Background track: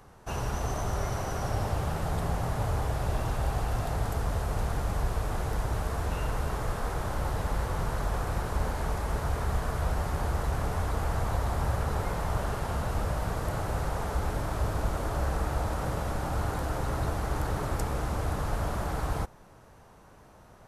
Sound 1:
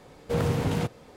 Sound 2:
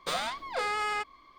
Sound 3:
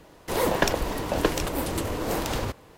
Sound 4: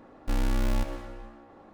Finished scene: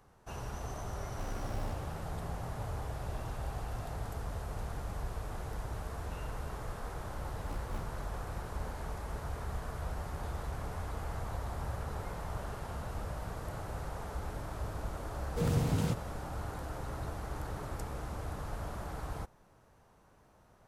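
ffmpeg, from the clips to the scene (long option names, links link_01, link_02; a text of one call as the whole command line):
ffmpeg -i bed.wav -i cue0.wav -i cue1.wav -i cue2.wav -i cue3.wav -filter_complex "[4:a]asplit=2[link_01][link_02];[0:a]volume=-9.5dB[link_03];[link_02]aeval=exprs='val(0)*pow(10,-25*(0.5-0.5*cos(2*PI*4.3*n/s))/20)':channel_layout=same[link_04];[2:a]acompressor=threshold=-43dB:ratio=6:attack=3.2:release=140:knee=1:detection=peak[link_05];[1:a]bass=frequency=250:gain=7,treble=frequency=4000:gain=8[link_06];[link_01]atrim=end=1.73,asetpts=PTS-STARTPTS,volume=-15dB,afade=type=in:duration=0.004:curve=hsin,afade=type=out:start_time=1.726:duration=0.004:curve=hsin,adelay=900[link_07];[link_04]atrim=end=1.73,asetpts=PTS-STARTPTS,volume=-14dB,afade=type=in:duration=0.004:curve=hsin,afade=type=out:start_time=1.726:duration=0.004:curve=hsin,adelay=311346S[link_08];[link_05]atrim=end=1.38,asetpts=PTS-STARTPTS,volume=-15dB,afade=type=in:duration=0.004:curve=hsin,afade=type=out:start_time=1.376:duration=0.004:curve=hsin,adelay=10170[link_09];[link_06]atrim=end=1.16,asetpts=PTS-STARTPTS,volume=-9.5dB,afade=type=in:duration=0.004:curve=hsin,afade=type=out:start_time=1.156:duration=0.004:curve=hsin,adelay=15070[link_10];[link_03][link_07][link_08][link_09][link_10]amix=inputs=5:normalize=0" out.wav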